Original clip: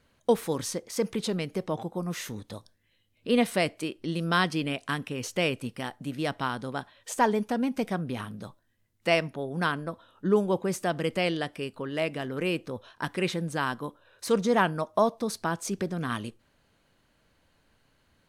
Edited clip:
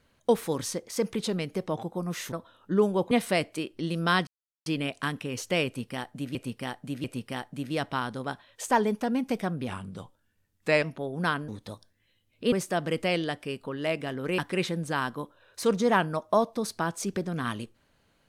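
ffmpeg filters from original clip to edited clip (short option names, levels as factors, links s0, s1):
-filter_complex "[0:a]asplit=11[s0][s1][s2][s3][s4][s5][s6][s7][s8][s9][s10];[s0]atrim=end=2.322[s11];[s1]atrim=start=9.858:end=10.652[s12];[s2]atrim=start=3.358:end=4.52,asetpts=PTS-STARTPTS,afade=t=out:st=1.158:d=0.004:c=hsin,apad=pad_dur=0.39[s13];[s3]atrim=start=4.52:end=6.212,asetpts=PTS-STARTPTS,afade=t=in:d=0.004:c=hsin[s14];[s4]atrim=start=5.518:end=6.212[s15];[s5]atrim=start=5.518:end=8.164[s16];[s6]atrim=start=8.16:end=9.2,asetpts=PTS-STARTPTS,asetrate=40131,aresample=44100[s17];[s7]atrim=start=9.196:end=9.862[s18];[s8]atrim=start=2.318:end=3.362[s19];[s9]atrim=start=10.648:end=12.512[s20];[s10]atrim=start=13.028[s21];[s11][s12]acrossfade=d=0.004:c1=hsin:c2=hsin[s22];[s13][s14]concat=n=2:v=0:a=1[s23];[s22][s23]acrossfade=d=0.004:c1=hsin:c2=hsin[s24];[s24][s15]acrossfade=d=0.004:c1=hsin:c2=hsin[s25];[s25][s16]acrossfade=d=0.004:c1=hsin:c2=hsin[s26];[s26][s17]acrossfade=d=0.004:c1=hsin:c2=hsin[s27];[s27][s18]acrossfade=d=0.004:c1=hsin:c2=hsin[s28];[s28][s19]acrossfade=d=0.004:c1=hsin:c2=hsin[s29];[s29][s20]acrossfade=d=0.004:c1=hsin:c2=hsin[s30];[s30][s21]acrossfade=d=0.004:c1=hsin:c2=hsin"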